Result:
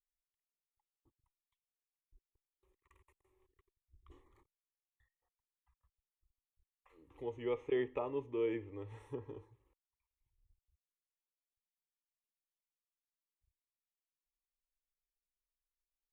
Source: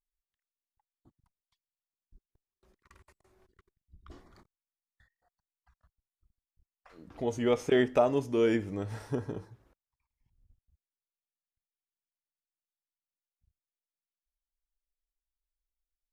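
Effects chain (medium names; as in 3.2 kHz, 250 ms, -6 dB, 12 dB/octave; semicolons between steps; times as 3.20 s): static phaser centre 1 kHz, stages 8; low-pass that closes with the level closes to 2.7 kHz, closed at -31 dBFS; trim -8 dB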